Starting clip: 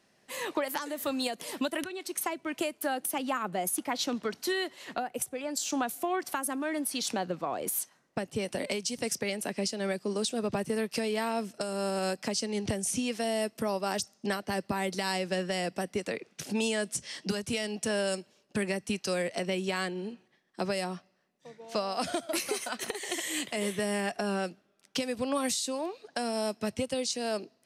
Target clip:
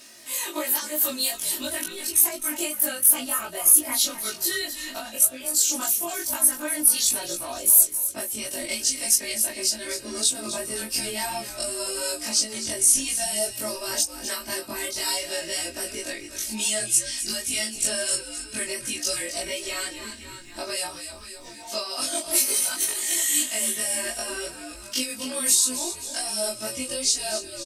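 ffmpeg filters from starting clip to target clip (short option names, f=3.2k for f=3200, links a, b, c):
-filter_complex "[0:a]afftfilt=real='re':imag='-im':win_size=2048:overlap=0.75,asplit=6[a][b][c][d][e][f];[b]adelay=262,afreqshift=-86,volume=-11dB[g];[c]adelay=524,afreqshift=-172,volume=-17.4dB[h];[d]adelay=786,afreqshift=-258,volume=-23.8dB[i];[e]adelay=1048,afreqshift=-344,volume=-30.1dB[j];[f]adelay=1310,afreqshift=-430,volume=-36.5dB[k];[a][g][h][i][j][k]amix=inputs=6:normalize=0,flanger=delay=15.5:depth=2.2:speed=2.8,crystalizer=i=6:c=0,aecho=1:1:3.2:0.8,asplit=2[l][m];[m]acompressor=mode=upward:threshold=-28dB:ratio=2.5,volume=2.5dB[n];[l][n]amix=inputs=2:normalize=0,adynamicequalizer=threshold=0.0501:dfrequency=7000:dqfactor=0.7:tfrequency=7000:tqfactor=0.7:attack=5:release=100:ratio=0.375:range=2:mode=boostabove:tftype=highshelf,volume=-6.5dB"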